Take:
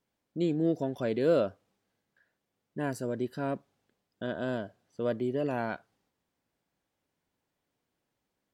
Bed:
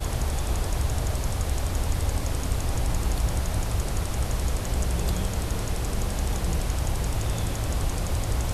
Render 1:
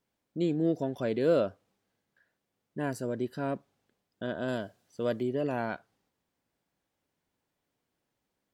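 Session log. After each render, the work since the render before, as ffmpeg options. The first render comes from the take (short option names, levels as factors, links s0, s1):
-filter_complex "[0:a]asettb=1/sr,asplit=3[s0][s1][s2];[s0]atrim=end=4.484[s3];[s1]atrim=start=4.48:end=5.23,asetpts=PTS-STARTPTS,afade=t=in:d=0.004:c=qsin,afade=t=out:st=0.746:d=0.004:c=qsin,highshelf=f=3700:g=10[s4];[s2]atrim=start=5.226[s5];[s3][s4]acrossfade=d=0.004:c1=hsin:c2=qsin[s6];[s6][s5]acrossfade=d=0.004:c1=qsin:c2=hsin"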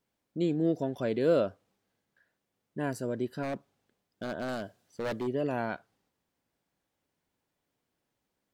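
-filter_complex "[0:a]asplit=3[s0][s1][s2];[s0]afade=t=out:st=3.42:d=0.02[s3];[s1]aeval=exprs='0.0473*(abs(mod(val(0)/0.0473+3,4)-2)-1)':c=same,afade=t=in:st=3.42:d=0.02,afade=t=out:st=5.26:d=0.02[s4];[s2]afade=t=in:st=5.26:d=0.02[s5];[s3][s4][s5]amix=inputs=3:normalize=0"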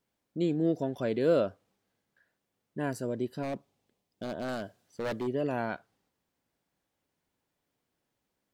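-filter_complex "[0:a]asettb=1/sr,asplit=3[s0][s1][s2];[s0]atrim=end=3.074[s3];[s1]atrim=start=3.07:end=4.45,asetpts=PTS-STARTPTS,afade=t=in:d=0.004:c=qsin,afade=t=out:st=1.376:d=0.004:c=qsin,equalizer=f=1500:t=o:w=0.58:g=-7[s4];[s2]atrim=start=4.446[s5];[s3][s4]acrossfade=d=0.004:c1=hsin:c2=qsin[s6];[s6][s5]acrossfade=d=0.004:c1=qsin:c2=hsin"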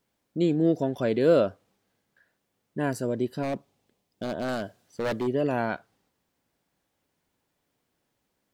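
-af "volume=1.78"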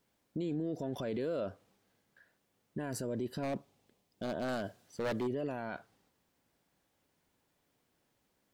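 -af "acompressor=threshold=0.0562:ratio=6,alimiter=level_in=1.58:limit=0.0631:level=0:latency=1:release=19,volume=0.631"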